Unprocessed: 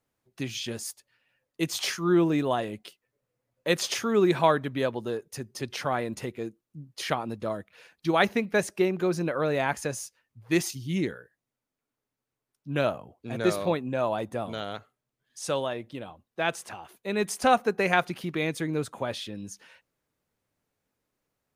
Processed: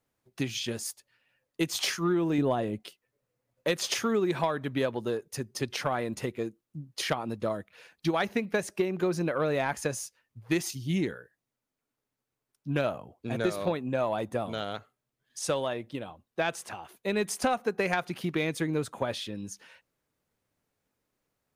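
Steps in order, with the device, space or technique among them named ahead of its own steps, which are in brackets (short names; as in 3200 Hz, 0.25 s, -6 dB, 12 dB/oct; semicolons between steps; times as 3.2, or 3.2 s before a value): drum-bus smash (transient shaper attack +4 dB, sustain 0 dB; compressor 10:1, threshold -22 dBFS, peak gain reduction 9.5 dB; soft clip -15 dBFS, distortion -23 dB); 2.38–2.8 tilt shelf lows +5 dB, about 750 Hz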